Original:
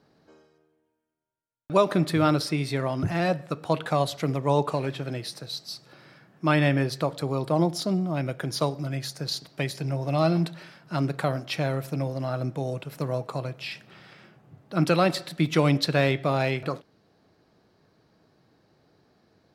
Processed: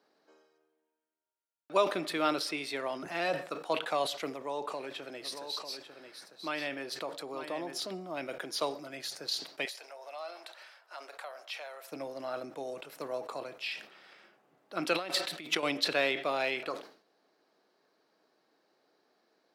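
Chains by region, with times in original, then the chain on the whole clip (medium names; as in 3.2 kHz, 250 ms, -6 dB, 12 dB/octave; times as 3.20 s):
4.32–7.91 s: compression 2:1, threshold -28 dBFS + delay 897 ms -8.5 dB
9.65–11.92 s: high-pass 560 Hz 24 dB/octave + compression 2:1, threshold -40 dBFS + tape noise reduction on one side only decoder only
14.93–15.63 s: partial rectifier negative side -3 dB + compressor with a negative ratio -30 dBFS
whole clip: Bessel high-pass 410 Hz, order 4; dynamic bell 2.9 kHz, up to +5 dB, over -44 dBFS, Q 1.6; decay stretcher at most 120 dB/s; trim -5 dB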